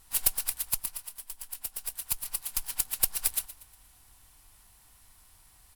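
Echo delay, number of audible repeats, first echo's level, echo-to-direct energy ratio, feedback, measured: 0.119 s, 3, -16.5 dB, -15.5 dB, 42%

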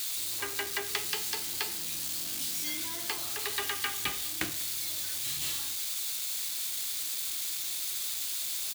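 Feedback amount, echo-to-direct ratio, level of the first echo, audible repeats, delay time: 25%, -21.5 dB, -22.0 dB, 1, 0.197 s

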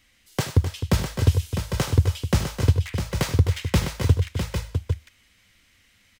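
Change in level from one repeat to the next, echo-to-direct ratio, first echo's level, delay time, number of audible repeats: no steady repeat, -3.0 dB, -14.5 dB, 76 ms, 4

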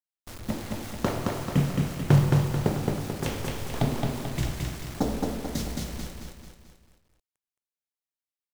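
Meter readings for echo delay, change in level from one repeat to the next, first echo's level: 0.219 s, -6.5 dB, -3.0 dB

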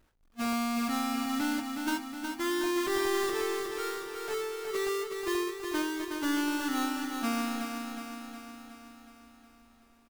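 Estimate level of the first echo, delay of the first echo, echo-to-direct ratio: -5.5 dB, 0.366 s, -3.5 dB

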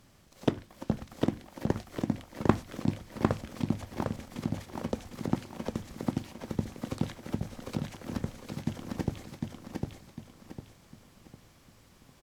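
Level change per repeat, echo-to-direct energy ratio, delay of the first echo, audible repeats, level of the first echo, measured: -9.0 dB, -2.5 dB, 0.753 s, 4, -3.0 dB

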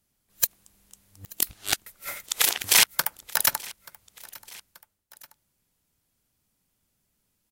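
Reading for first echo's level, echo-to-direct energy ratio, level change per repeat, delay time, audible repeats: -22.0 dB, -21.0 dB, -5.0 dB, 0.882 s, 2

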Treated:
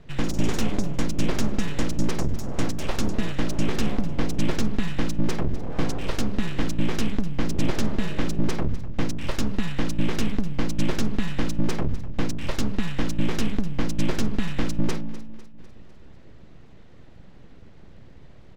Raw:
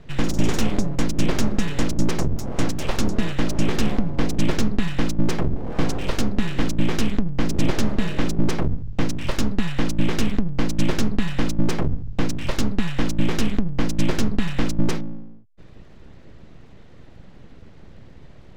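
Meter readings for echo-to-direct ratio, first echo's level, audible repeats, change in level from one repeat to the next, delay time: -15.0 dB, -16.5 dB, 4, -5.5 dB, 0.25 s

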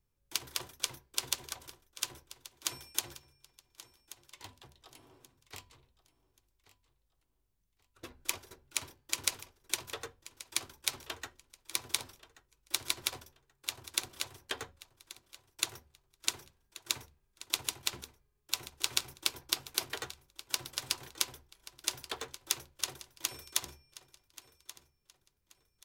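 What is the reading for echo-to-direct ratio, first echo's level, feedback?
-16.5 dB, -17.0 dB, 30%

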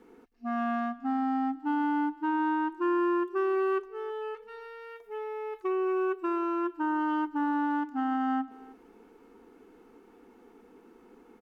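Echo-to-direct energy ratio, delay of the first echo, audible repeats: -21.0 dB, 0.317 s, 1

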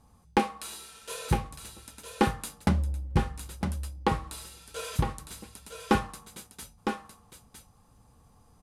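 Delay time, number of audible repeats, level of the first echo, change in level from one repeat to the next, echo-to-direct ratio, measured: 0.958 s, 1, -6.5 dB, no steady repeat, -6.5 dB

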